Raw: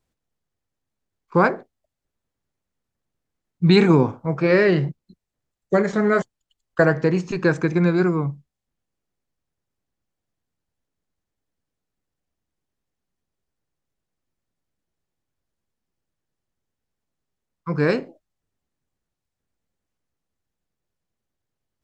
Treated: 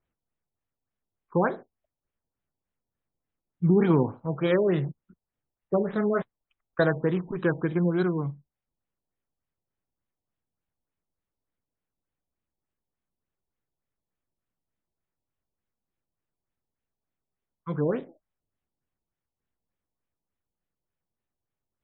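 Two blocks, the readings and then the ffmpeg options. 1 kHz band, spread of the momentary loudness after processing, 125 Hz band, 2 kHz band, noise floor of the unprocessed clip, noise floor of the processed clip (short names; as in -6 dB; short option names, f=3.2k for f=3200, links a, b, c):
-7.5 dB, 13 LU, -6.0 dB, -10.0 dB, -83 dBFS, under -85 dBFS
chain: -af "acrusher=samples=8:mix=1:aa=0.000001,afftfilt=real='re*lt(b*sr/1024,970*pow(4100/970,0.5+0.5*sin(2*PI*3.4*pts/sr)))':imag='im*lt(b*sr/1024,970*pow(4100/970,0.5+0.5*sin(2*PI*3.4*pts/sr)))':win_size=1024:overlap=0.75,volume=-6dB"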